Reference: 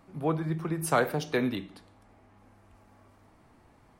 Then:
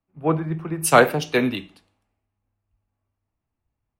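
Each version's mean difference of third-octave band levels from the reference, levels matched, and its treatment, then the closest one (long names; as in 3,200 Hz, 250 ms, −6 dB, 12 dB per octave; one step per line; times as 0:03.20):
9.5 dB: parametric band 2,700 Hz +7.5 dB 0.34 octaves
multiband upward and downward expander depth 100%
level +3.5 dB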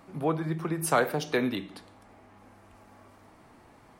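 3.0 dB: low-shelf EQ 130 Hz −8.5 dB
in parallel at 0 dB: downward compressor, threshold −39 dBFS, peak gain reduction 17.5 dB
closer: second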